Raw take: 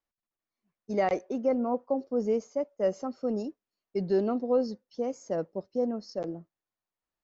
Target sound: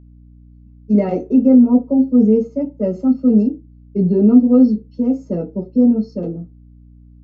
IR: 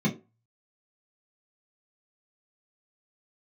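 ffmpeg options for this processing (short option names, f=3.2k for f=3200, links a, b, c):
-filter_complex "[0:a]asettb=1/sr,asplit=3[a][b][c];[a]atrim=end=3.474[d];[b]atrim=start=3.47:end=4.29,asetpts=PTS-STARTPTS,afade=t=in:d=0.004:c=qsin,afade=t=out:st=0.816:d=0.004:c=qsin,lowpass=f=1.6k:p=1[e];[c]atrim=start=4.286[f];[d][e]acrossfade=d=0.004:c1=hsin:c2=qsin[g];[g][f]acrossfade=d=0.004:c1=qsin:c2=hsin[h];[1:a]atrim=start_sample=2205,asetrate=52920,aresample=44100[i];[h][i]afir=irnorm=-1:irlink=0,aeval=exprs='val(0)+0.0158*(sin(2*PI*60*n/s)+sin(2*PI*2*60*n/s)/2+sin(2*PI*3*60*n/s)/3+sin(2*PI*4*60*n/s)/4+sin(2*PI*5*60*n/s)/5)':c=same,volume=-6dB"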